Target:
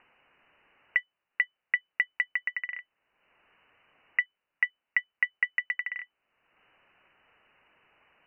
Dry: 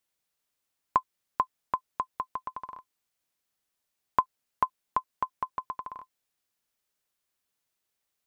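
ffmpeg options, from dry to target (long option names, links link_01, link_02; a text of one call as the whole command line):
ffmpeg -i in.wav -filter_complex "[0:a]asplit=2[link_01][link_02];[link_02]acompressor=mode=upward:threshold=-35dB:ratio=2.5,volume=0.5dB[link_03];[link_01][link_03]amix=inputs=2:normalize=0,alimiter=limit=-11dB:level=0:latency=1:release=123,lowpass=frequency=2600:width_type=q:width=0.5098,lowpass=frequency=2600:width_type=q:width=0.6013,lowpass=frequency=2600:width_type=q:width=0.9,lowpass=frequency=2600:width_type=q:width=2.563,afreqshift=-3000,volume=-1dB" out.wav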